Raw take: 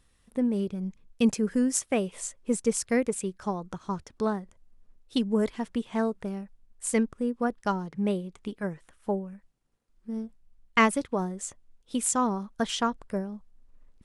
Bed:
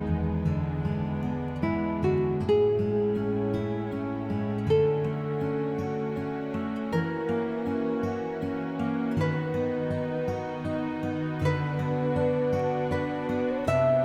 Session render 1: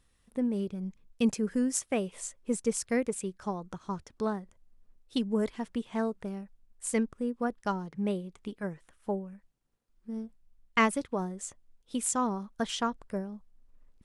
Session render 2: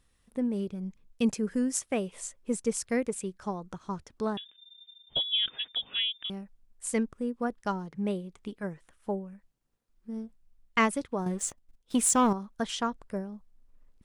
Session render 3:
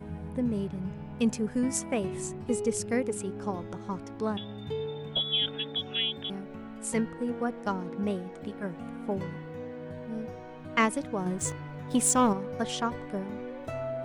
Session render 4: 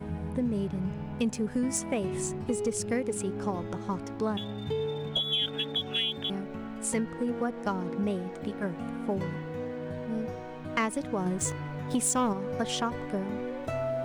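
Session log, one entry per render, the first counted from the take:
level −3.5 dB
0:04.37–0:06.30: voice inversion scrambler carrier 3,600 Hz; 0:11.26–0:12.33: leveller curve on the samples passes 2
mix in bed −11.5 dB
downward compressor 3 to 1, threshold −30 dBFS, peak gain reduction 8.5 dB; leveller curve on the samples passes 1

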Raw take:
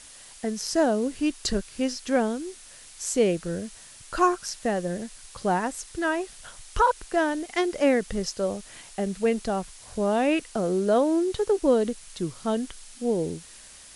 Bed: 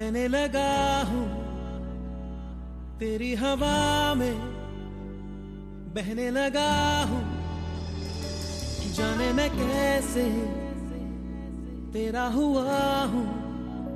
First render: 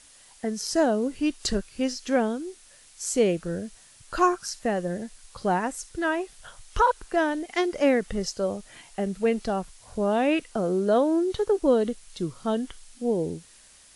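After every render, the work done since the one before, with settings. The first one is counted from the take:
noise reduction from a noise print 6 dB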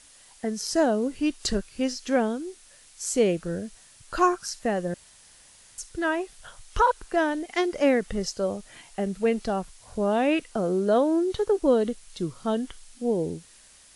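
0:04.94–0:05.78: fill with room tone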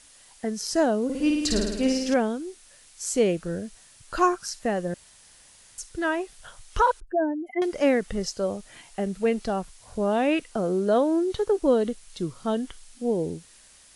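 0:01.04–0:02.14: flutter between parallel walls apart 9.2 metres, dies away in 1.1 s
0:07.00–0:07.62: expanding power law on the bin magnitudes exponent 3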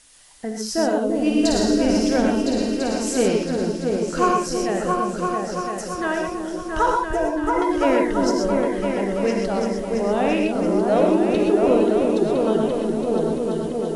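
echo whose low-pass opens from repeat to repeat 337 ms, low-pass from 400 Hz, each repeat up 2 octaves, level 0 dB
reverb whose tail is shaped and stops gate 150 ms rising, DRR 1.5 dB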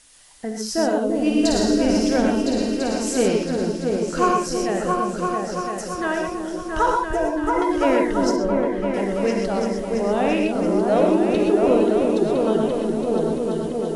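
0:08.36–0:08.94: low-pass filter 2,200 Hz 6 dB per octave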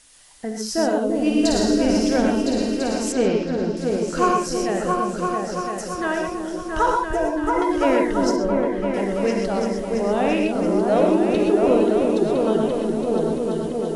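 0:03.12–0:03.77: high-frequency loss of the air 130 metres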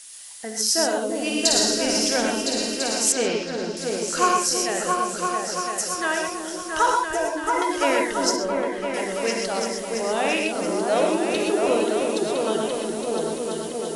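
spectral tilt +3.5 dB per octave
mains-hum notches 50/100/150/200/250/300 Hz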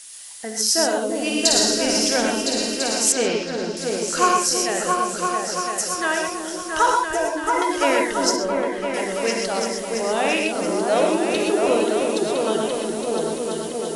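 level +2 dB

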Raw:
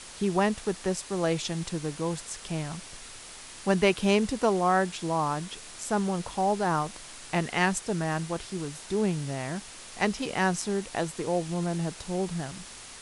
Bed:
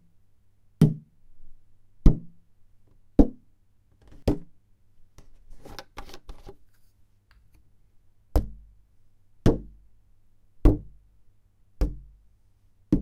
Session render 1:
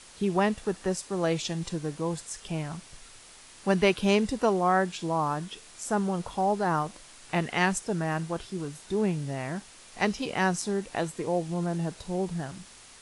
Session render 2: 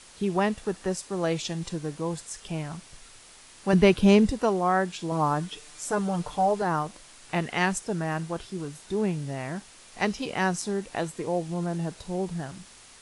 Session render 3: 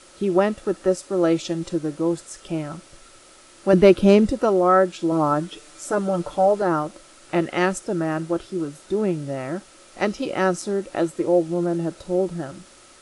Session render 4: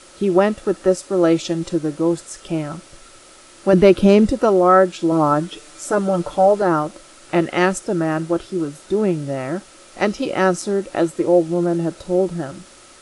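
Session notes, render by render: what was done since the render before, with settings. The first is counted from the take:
noise reduction from a noise print 6 dB
0:03.73–0:04.32: low-shelf EQ 350 Hz +10 dB; 0:05.11–0:06.62: comb filter 6.7 ms, depth 75%
hollow resonant body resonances 340/550/1,300 Hz, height 13 dB, ringing for 40 ms; hard clipping −3.5 dBFS, distortion −38 dB
level +4 dB; brickwall limiter −2 dBFS, peak gain reduction 2.5 dB

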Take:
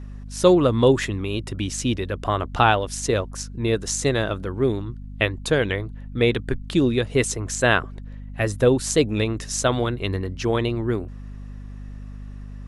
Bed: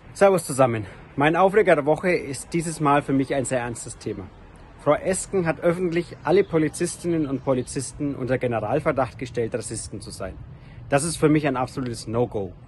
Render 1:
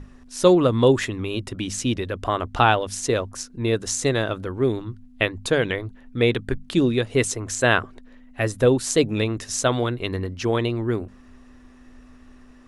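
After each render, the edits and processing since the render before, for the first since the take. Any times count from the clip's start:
mains-hum notches 50/100/150/200 Hz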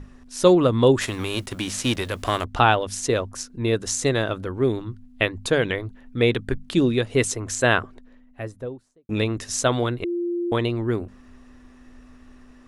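0:01.00–0:02.43: spectral envelope flattened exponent 0.6
0:07.56–0:09.09: fade out and dull
0:10.04–0:10.52: beep over 347 Hz −22.5 dBFS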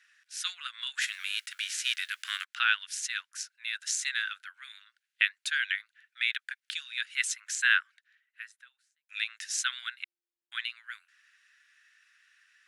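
Chebyshev high-pass filter 1,500 Hz, order 5
high-shelf EQ 6,200 Hz −7.5 dB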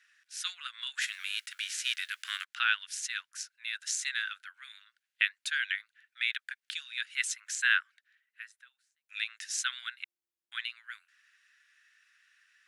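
level −2 dB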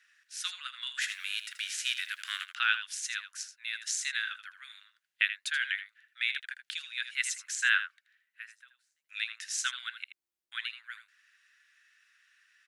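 single-tap delay 80 ms −11 dB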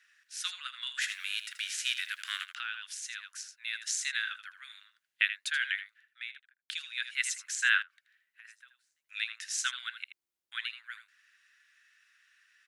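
0:02.57–0:03.52: downward compressor 2.5 to 1, threshold −38 dBFS
0:05.82–0:06.69: fade out and dull
0:07.82–0:08.45: downward compressor 8 to 1, threshold −49 dBFS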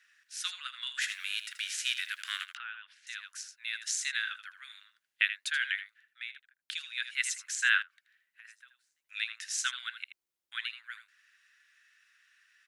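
0:02.57–0:03.07: high-frequency loss of the air 450 metres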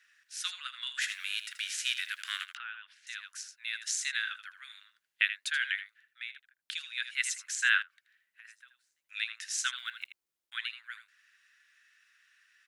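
0:09.76–0:10.55: one scale factor per block 7 bits

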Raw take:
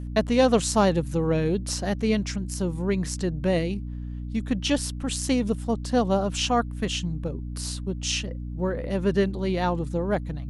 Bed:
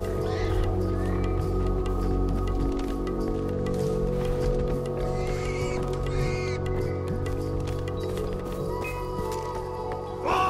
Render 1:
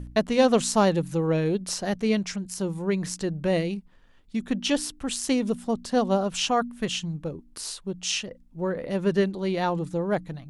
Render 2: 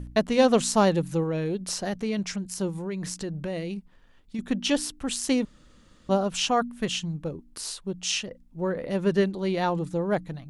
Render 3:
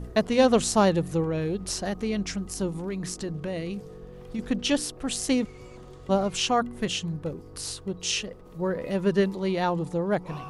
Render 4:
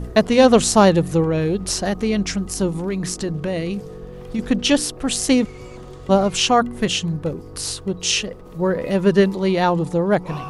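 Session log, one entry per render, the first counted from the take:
hum removal 60 Hz, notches 5
0:01.23–0:02.19: downward compressor 3 to 1, threshold −25 dBFS; 0:02.69–0:04.39: downward compressor 4 to 1, threshold −29 dBFS; 0:05.45–0:06.09: fill with room tone
mix in bed −17.5 dB
level +8 dB; brickwall limiter −3 dBFS, peak gain reduction 1.5 dB

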